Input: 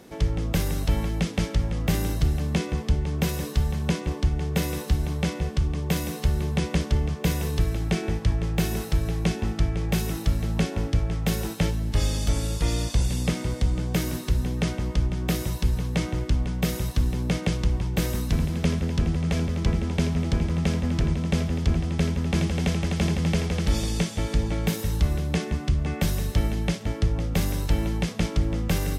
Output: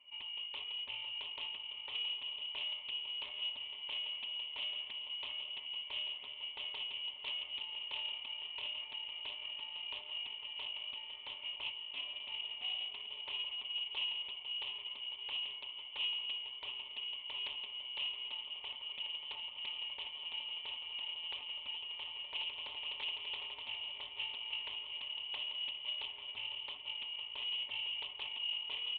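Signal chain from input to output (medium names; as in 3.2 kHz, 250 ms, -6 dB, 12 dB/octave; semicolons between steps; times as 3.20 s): Chebyshev high-pass 220 Hz, order 2; comb 6.1 ms, depth 83%; saturation -20 dBFS, distortion -15 dB; vowel filter u; feedback comb 560 Hz, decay 0.52 s, mix 70%; echo that smears into a reverb 912 ms, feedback 72%, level -10.5 dB; frequency inversion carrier 3.2 kHz; loudspeaker Doppler distortion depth 0.3 ms; trim +6.5 dB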